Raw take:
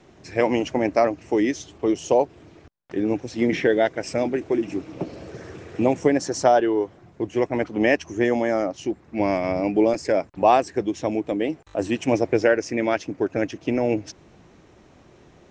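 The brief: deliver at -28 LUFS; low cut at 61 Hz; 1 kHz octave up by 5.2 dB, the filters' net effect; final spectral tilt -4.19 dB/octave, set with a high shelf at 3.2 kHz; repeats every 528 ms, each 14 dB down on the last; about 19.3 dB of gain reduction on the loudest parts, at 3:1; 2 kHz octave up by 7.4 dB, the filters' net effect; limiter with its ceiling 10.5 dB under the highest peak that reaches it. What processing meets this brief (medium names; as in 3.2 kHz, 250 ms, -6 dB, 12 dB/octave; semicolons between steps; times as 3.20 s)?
high-pass 61 Hz; peaking EQ 1 kHz +6.5 dB; peaking EQ 2 kHz +5.5 dB; treble shelf 3.2 kHz +4.5 dB; compression 3:1, threshold -35 dBFS; peak limiter -26 dBFS; feedback delay 528 ms, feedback 20%, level -14 dB; trim +10 dB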